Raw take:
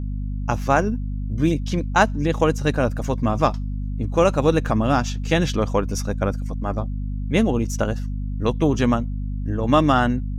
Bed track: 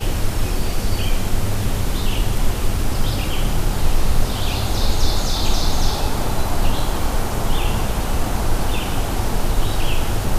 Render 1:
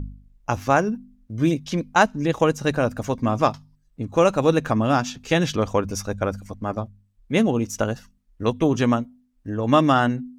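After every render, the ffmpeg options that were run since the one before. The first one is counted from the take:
ffmpeg -i in.wav -af "bandreject=frequency=50:width_type=h:width=4,bandreject=frequency=100:width_type=h:width=4,bandreject=frequency=150:width_type=h:width=4,bandreject=frequency=200:width_type=h:width=4,bandreject=frequency=250:width_type=h:width=4" out.wav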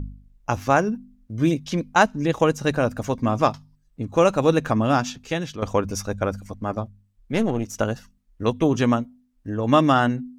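ffmpeg -i in.wav -filter_complex "[0:a]asettb=1/sr,asplit=3[link_01][link_02][link_03];[link_01]atrim=end=7.324[link_04];[link_02]atrim=start=7.32:end=7.79,asetpts=PTS-STARTPTS,afade=type=in:duration=0.004:curve=qsin,afade=type=out:start_time=0.466:duration=0.004:curve=qsin,aeval=exprs='(tanh(5.01*val(0)+0.65)-tanh(0.65))/5.01':channel_layout=same[link_05];[link_03]atrim=start=7.786[link_06];[link_04][link_05]acrossfade=duration=0.004:curve1=hsin:curve2=qsin[link_07];[link_07][link_06]acrossfade=duration=0.004:curve1=qsin:curve2=hsin,asplit=2[link_08][link_09];[link_08]atrim=end=5.62,asetpts=PTS-STARTPTS,afade=type=out:start_time=5.1:duration=0.52:curve=qua:silence=0.316228[link_10];[link_09]atrim=start=5.62,asetpts=PTS-STARTPTS,afade=type=in:duration=0.004:curve=hsin:silence=0.316228[link_11];[link_10][link_11]concat=n=2:v=0:a=1" out.wav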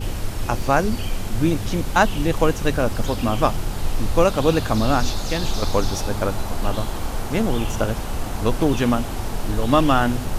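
ffmpeg -i in.wav -i bed.wav -filter_complex "[1:a]volume=-6dB[link_01];[0:a][link_01]amix=inputs=2:normalize=0" out.wav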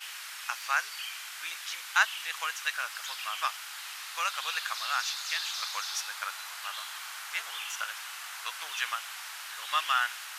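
ffmpeg -i in.wav -af "highpass=frequency=1400:width=0.5412,highpass=frequency=1400:width=1.3066,highshelf=frequency=4500:gain=-5.5" out.wav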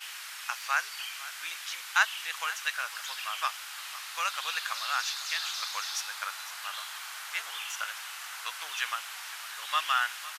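ffmpeg -i in.wav -af "aecho=1:1:506:0.15" out.wav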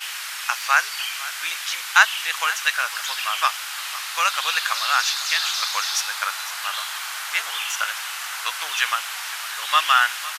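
ffmpeg -i in.wav -af "volume=10.5dB,alimiter=limit=-1dB:level=0:latency=1" out.wav

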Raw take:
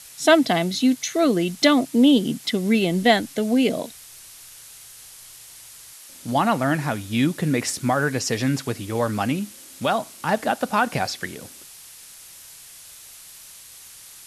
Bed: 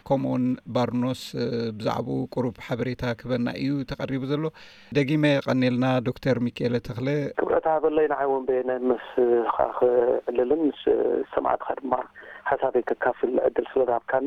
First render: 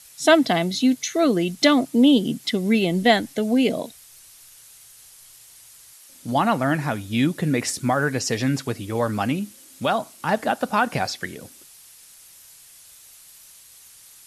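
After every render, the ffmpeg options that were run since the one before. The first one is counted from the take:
ffmpeg -i in.wav -af "afftdn=noise_reduction=6:noise_floor=-44" out.wav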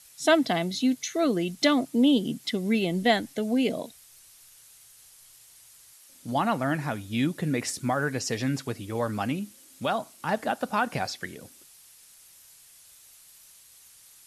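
ffmpeg -i in.wav -af "volume=-5.5dB" out.wav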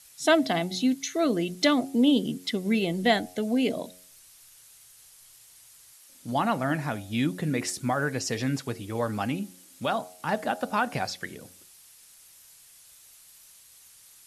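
ffmpeg -i in.wav -af "bandreject=frequency=90.81:width_type=h:width=4,bandreject=frequency=181.62:width_type=h:width=4,bandreject=frequency=272.43:width_type=h:width=4,bandreject=frequency=363.24:width_type=h:width=4,bandreject=frequency=454.05:width_type=h:width=4,bandreject=frequency=544.86:width_type=h:width=4,bandreject=frequency=635.67:width_type=h:width=4,bandreject=frequency=726.48:width_type=h:width=4,bandreject=frequency=817.29:width_type=h:width=4" out.wav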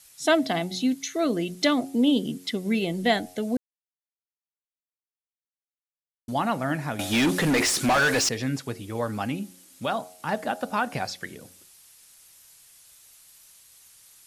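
ffmpeg -i in.wav -filter_complex "[0:a]asettb=1/sr,asplit=3[link_01][link_02][link_03];[link_01]atrim=end=6.994[link_04];[link_02]atrim=start=6.99:end=8.29,asetpts=PTS-STARTPTS,afade=type=in:duration=0.004:curve=qsin,afade=type=out:start_time=1.296:duration=0.004:curve=qsin,asplit=2[link_05][link_06];[link_06]highpass=frequency=720:poles=1,volume=27dB,asoftclip=type=tanh:threshold=-14dB[link_07];[link_05][link_07]amix=inputs=2:normalize=0,lowpass=frequency=6000:poles=1,volume=-6dB[link_08];[link_03]atrim=start=8.286[link_09];[link_04][link_08]acrossfade=duration=0.004:curve1=hsin:curve2=qsin[link_10];[link_10][link_09]acrossfade=duration=0.004:curve1=qsin:curve2=hsin,asplit=3[link_11][link_12][link_13];[link_11]atrim=end=3.57,asetpts=PTS-STARTPTS,afade=type=out:start_time=3.566:duration=0.004:curve=hsin[link_14];[link_12]atrim=start=3.57:end=6.28,asetpts=PTS-STARTPTS,volume=0[link_15];[link_13]atrim=start=6.28,asetpts=PTS-STARTPTS,afade=type=in:duration=0.004:curve=hsin[link_16];[link_14][link_15][link_16]concat=n=3:v=0:a=1" out.wav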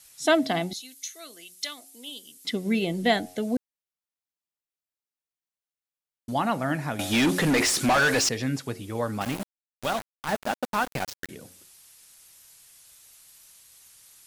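ffmpeg -i in.wav -filter_complex "[0:a]asettb=1/sr,asplit=3[link_01][link_02][link_03];[link_01]atrim=end=0.734[link_04];[link_02]atrim=start=0.73:end=2.45,asetpts=PTS-STARTPTS,afade=type=in:duration=0.004:curve=qsin,afade=type=out:start_time=1.716:duration=0.004:curve=qsin,aderivative[link_05];[link_03]atrim=start=2.446[link_06];[link_04][link_05]acrossfade=duration=0.004:curve1=hsin:curve2=qsin[link_07];[link_07][link_06]acrossfade=duration=0.004:curve1=qsin:curve2=hsin,asettb=1/sr,asplit=3[link_08][link_09][link_10];[link_08]atrim=end=9.214[link_11];[link_09]atrim=start=9.21:end=11.29,asetpts=PTS-STARTPTS,afade=type=in:duration=0.004:curve=qsin,afade=type=out:start_time=2.076:duration=0.004:curve=qsin,aeval=exprs='val(0)*gte(abs(val(0)),0.0355)':channel_layout=same[link_12];[link_10]atrim=start=11.286[link_13];[link_11][link_12]acrossfade=duration=0.004:curve1=hsin:curve2=qsin[link_14];[link_14][link_13]acrossfade=duration=0.004:curve1=qsin:curve2=hsin" out.wav

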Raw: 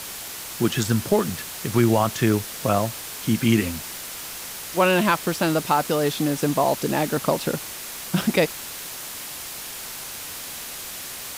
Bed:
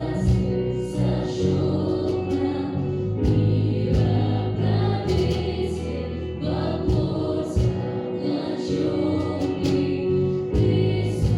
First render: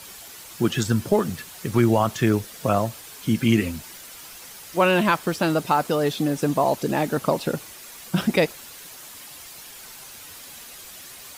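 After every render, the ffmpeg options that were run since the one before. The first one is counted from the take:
ffmpeg -i in.wav -af "afftdn=noise_reduction=9:noise_floor=-35" out.wav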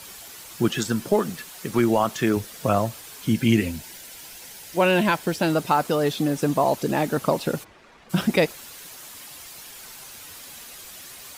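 ffmpeg -i in.wav -filter_complex "[0:a]asettb=1/sr,asplit=3[link_01][link_02][link_03];[link_01]atrim=end=0.684[link_04];[link_02]atrim=start=0.68:end=2.37,asetpts=PTS-STARTPTS,afade=type=in:duration=0.004:curve=qsin,afade=type=out:start_time=1.686:duration=0.004:curve=qsin,equalizer=frequency=89:width=1.5:gain=-14[link_05];[link_03]atrim=start=2.366[link_06];[link_04][link_05]acrossfade=duration=0.004:curve1=hsin:curve2=qsin[link_07];[link_07][link_06]acrossfade=duration=0.004:curve1=qsin:curve2=hsin,asettb=1/sr,asplit=3[link_08][link_09][link_10];[link_08]atrim=end=3.324[link_11];[link_09]atrim=start=3.32:end=5.53,asetpts=PTS-STARTPTS,afade=type=in:duration=0.004:curve=qsin,afade=type=out:start_time=2.206:duration=0.004:curve=qsin,equalizer=frequency=1200:width=6.9:gain=-12[link_12];[link_10]atrim=start=5.526[link_13];[link_11][link_12]acrossfade=duration=0.004:curve1=hsin:curve2=qsin[link_14];[link_14][link_13]acrossfade=duration=0.004:curve1=qsin:curve2=hsin,asplit=3[link_15][link_16][link_17];[link_15]afade=type=out:start_time=7.63:duration=0.02[link_18];[link_16]adynamicsmooth=sensitivity=3:basefreq=1800,afade=type=in:start_time=7.63:duration=0.02,afade=type=out:start_time=8.09:duration=0.02[link_19];[link_17]afade=type=in:start_time=8.09:duration=0.02[link_20];[link_18][link_19][link_20]amix=inputs=3:normalize=0" out.wav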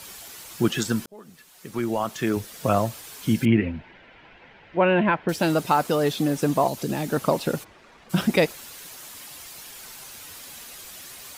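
ffmpeg -i in.wav -filter_complex "[0:a]asettb=1/sr,asplit=3[link_01][link_02][link_03];[link_01]atrim=end=3.454[link_04];[link_02]atrim=start=3.45:end=5.29,asetpts=PTS-STARTPTS,afade=type=in:duration=0.004:curve=qsin,afade=type=out:start_time=1.836:duration=0.004:curve=qsin,lowpass=frequency=2500:width=0.5412,lowpass=frequency=2500:width=1.3066[link_05];[link_03]atrim=start=5.286[link_06];[link_04][link_05]acrossfade=duration=0.004:curve1=hsin:curve2=qsin[link_07];[link_07][link_06]acrossfade=duration=0.004:curve1=qsin:curve2=hsin,asettb=1/sr,asplit=3[link_08][link_09][link_10];[link_08]atrim=end=6.674[link_11];[link_09]atrim=start=6.67:end=7.12,asetpts=PTS-STARTPTS,afade=type=in:duration=0.004:curve=qsin,afade=type=out:start_time=0.446:duration=0.004:curve=qsin,acrossover=split=260|3000[link_12][link_13][link_14];[link_13]acompressor=threshold=-28dB:ratio=6:attack=3.2:release=140:knee=2.83:detection=peak[link_15];[link_12][link_15][link_14]amix=inputs=3:normalize=0[link_16];[link_10]atrim=start=7.116[link_17];[link_11][link_16]acrossfade=duration=0.004:curve1=hsin:curve2=qsin[link_18];[link_18][link_17]acrossfade=duration=0.004:curve1=qsin:curve2=hsin,asplit=2[link_19][link_20];[link_19]atrim=end=1.06,asetpts=PTS-STARTPTS,afade=type=out:start_time=1.056:duration=0.004:curve=hsin[link_21];[link_20]atrim=start=1.06,asetpts=PTS-STARTPTS,afade=type=in:duration=1.68[link_22];[link_21][link_22]concat=n=2:v=0:a=1" out.wav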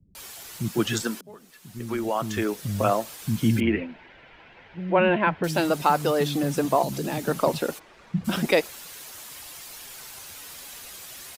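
ffmpeg -i in.wav -filter_complex "[0:a]acrossover=split=220[link_01][link_02];[link_02]adelay=150[link_03];[link_01][link_03]amix=inputs=2:normalize=0" out.wav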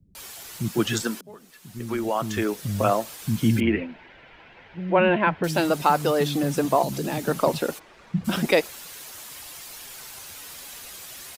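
ffmpeg -i in.wav -af "volume=1dB" out.wav

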